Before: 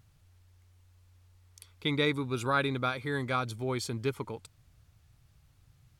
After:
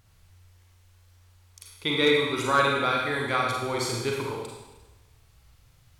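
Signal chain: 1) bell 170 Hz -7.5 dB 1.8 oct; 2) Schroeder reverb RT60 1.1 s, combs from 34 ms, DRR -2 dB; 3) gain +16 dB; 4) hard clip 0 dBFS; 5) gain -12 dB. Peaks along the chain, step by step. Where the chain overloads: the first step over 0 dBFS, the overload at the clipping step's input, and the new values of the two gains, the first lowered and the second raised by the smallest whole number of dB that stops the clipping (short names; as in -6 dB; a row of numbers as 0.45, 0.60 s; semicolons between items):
-15.0, -12.0, +4.0, 0.0, -12.0 dBFS; step 3, 4.0 dB; step 3 +12 dB, step 5 -8 dB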